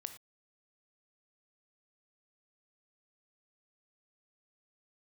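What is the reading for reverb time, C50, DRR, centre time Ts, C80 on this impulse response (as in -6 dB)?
not exponential, 10.5 dB, 8.5 dB, 9 ms, 14.0 dB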